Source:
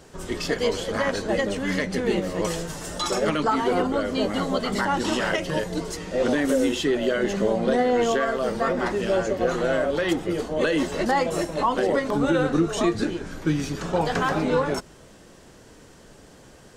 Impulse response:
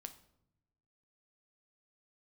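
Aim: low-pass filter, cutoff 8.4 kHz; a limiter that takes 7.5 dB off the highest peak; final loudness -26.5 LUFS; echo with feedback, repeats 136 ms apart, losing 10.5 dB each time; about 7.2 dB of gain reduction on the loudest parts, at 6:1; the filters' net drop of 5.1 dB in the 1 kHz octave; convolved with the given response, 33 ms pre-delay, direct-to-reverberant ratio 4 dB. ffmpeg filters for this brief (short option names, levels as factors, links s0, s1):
-filter_complex "[0:a]lowpass=8400,equalizer=f=1000:t=o:g=-7,acompressor=threshold=0.0501:ratio=6,alimiter=limit=0.0631:level=0:latency=1,aecho=1:1:136|272|408:0.299|0.0896|0.0269,asplit=2[s0][s1];[1:a]atrim=start_sample=2205,adelay=33[s2];[s1][s2]afir=irnorm=-1:irlink=0,volume=1.12[s3];[s0][s3]amix=inputs=2:normalize=0,volume=1.68"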